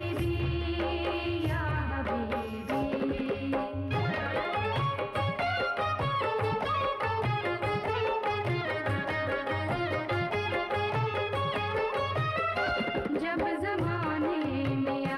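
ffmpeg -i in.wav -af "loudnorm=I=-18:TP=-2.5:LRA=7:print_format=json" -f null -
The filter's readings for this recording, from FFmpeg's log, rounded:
"input_i" : "-30.4",
"input_tp" : "-19.1",
"input_lra" : "1.3",
"input_thresh" : "-40.4",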